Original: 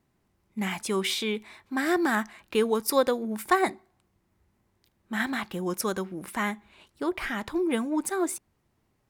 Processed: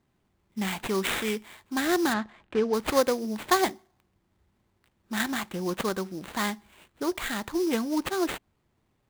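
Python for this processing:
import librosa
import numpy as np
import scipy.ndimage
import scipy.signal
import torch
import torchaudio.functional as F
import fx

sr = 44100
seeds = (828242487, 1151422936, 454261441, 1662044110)

y = fx.sample_hold(x, sr, seeds[0], rate_hz=5500.0, jitter_pct=20)
y = fx.spacing_loss(y, sr, db_at_10k=24, at=(2.12, 2.73), fade=0.02)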